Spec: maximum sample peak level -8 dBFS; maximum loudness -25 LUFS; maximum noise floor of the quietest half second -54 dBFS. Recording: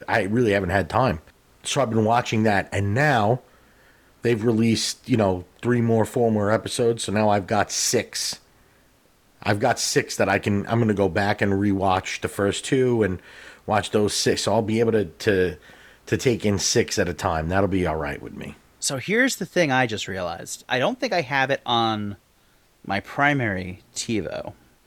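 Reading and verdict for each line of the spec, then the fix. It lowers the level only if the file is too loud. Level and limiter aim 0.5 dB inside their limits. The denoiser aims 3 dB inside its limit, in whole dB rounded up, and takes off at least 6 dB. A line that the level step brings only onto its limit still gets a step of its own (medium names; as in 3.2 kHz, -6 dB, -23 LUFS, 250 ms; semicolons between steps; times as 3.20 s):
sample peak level -5.0 dBFS: fail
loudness -22.5 LUFS: fail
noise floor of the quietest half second -59 dBFS: pass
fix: trim -3 dB; peak limiter -8.5 dBFS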